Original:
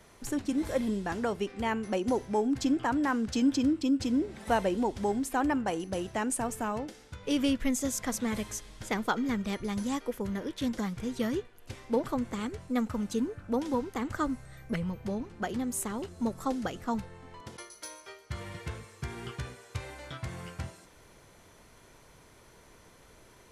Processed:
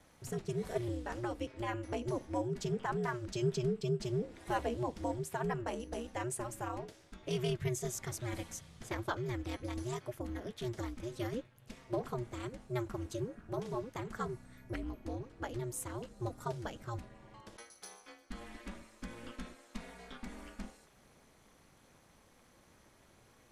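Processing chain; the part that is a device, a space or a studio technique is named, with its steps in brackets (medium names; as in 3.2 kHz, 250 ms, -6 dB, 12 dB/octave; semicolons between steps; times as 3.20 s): alien voice (ring modulator 120 Hz; flange 0.12 Hz, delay 1.2 ms, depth 4 ms, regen -78%)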